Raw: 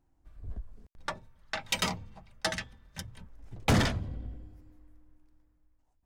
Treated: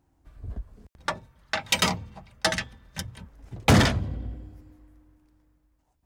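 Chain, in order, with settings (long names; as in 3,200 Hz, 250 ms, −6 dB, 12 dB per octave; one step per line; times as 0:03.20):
high-pass filter 46 Hz
level +7 dB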